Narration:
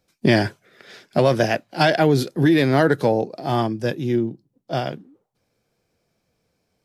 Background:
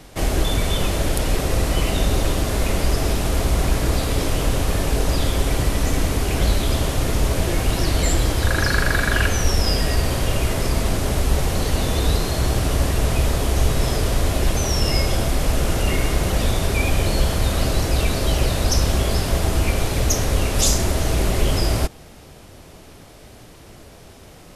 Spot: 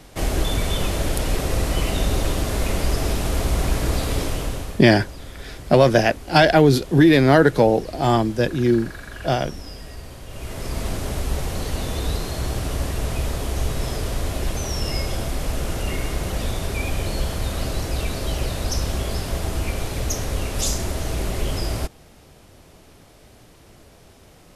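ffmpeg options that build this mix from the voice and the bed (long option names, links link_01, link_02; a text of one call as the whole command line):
ffmpeg -i stem1.wav -i stem2.wav -filter_complex "[0:a]adelay=4550,volume=3dB[link_01];[1:a]volume=10dB,afade=type=out:start_time=4.15:duration=0.69:silence=0.16788,afade=type=in:start_time=10.28:duration=0.57:silence=0.251189[link_02];[link_01][link_02]amix=inputs=2:normalize=0" out.wav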